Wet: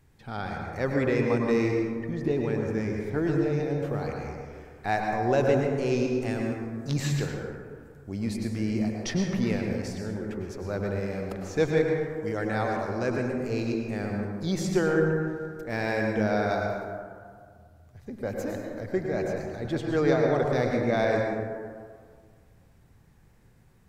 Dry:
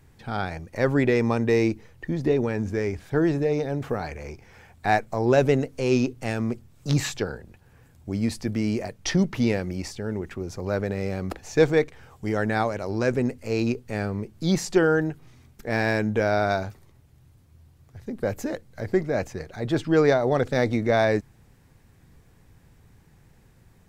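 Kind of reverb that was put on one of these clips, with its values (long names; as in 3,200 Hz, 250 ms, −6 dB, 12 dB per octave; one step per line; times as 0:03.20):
dense smooth reverb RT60 1.9 s, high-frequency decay 0.35×, pre-delay 90 ms, DRR 0.5 dB
level −6 dB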